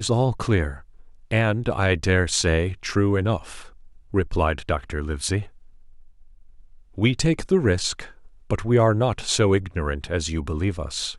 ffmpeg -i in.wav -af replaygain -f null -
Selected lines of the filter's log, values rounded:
track_gain = +3.4 dB
track_peak = 0.360